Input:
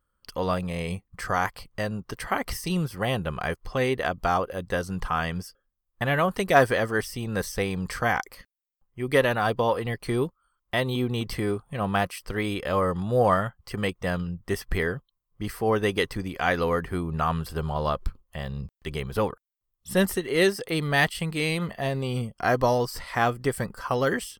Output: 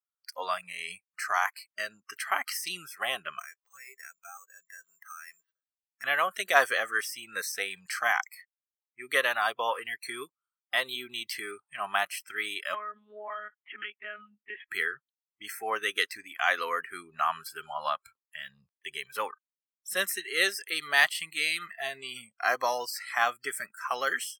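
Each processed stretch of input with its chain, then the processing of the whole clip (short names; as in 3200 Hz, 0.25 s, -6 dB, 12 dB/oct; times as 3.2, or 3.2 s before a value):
3.39–6.04 compressor, threshold -38 dBFS + careless resampling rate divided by 6×, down filtered, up hold
12.74–14.68 monotone LPC vocoder at 8 kHz 210 Hz + compressor 12:1, threshold -26 dBFS
whole clip: HPF 1000 Hz 12 dB/oct; spectral noise reduction 23 dB; gain +1.5 dB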